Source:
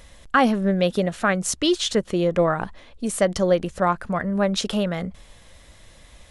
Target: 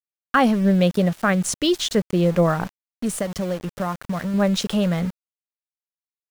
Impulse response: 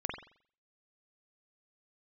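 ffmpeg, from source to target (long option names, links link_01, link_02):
-filter_complex "[0:a]equalizer=frequency=170:width_type=o:width=0.5:gain=7,asettb=1/sr,asplit=3[link_01][link_02][link_03];[link_01]atrim=end=3.104[link_04];[link_02]atrim=start=3.1:end=4.34,asetpts=PTS-STARTPTS,afade=type=in:duration=0.004:curve=qsin,afade=type=out:start_time=1.236:duration=0.004:curve=qsin,acompressor=threshold=-23dB:ratio=4[link_05];[link_03]atrim=start=4.336[link_06];[link_04][link_05]acrossfade=duration=0.004:curve1=hsin:curve2=qsin[link_07];[link_07][link_06]acrossfade=duration=0.004:curve1=qsin:curve2=hsin,aeval=exprs='val(0)*gte(abs(val(0)),0.0237)':channel_layout=same"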